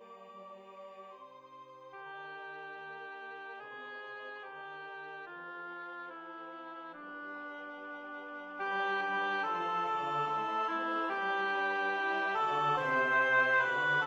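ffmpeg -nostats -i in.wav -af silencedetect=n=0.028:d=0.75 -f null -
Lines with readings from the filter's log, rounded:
silence_start: 0.00
silence_end: 8.60 | silence_duration: 8.60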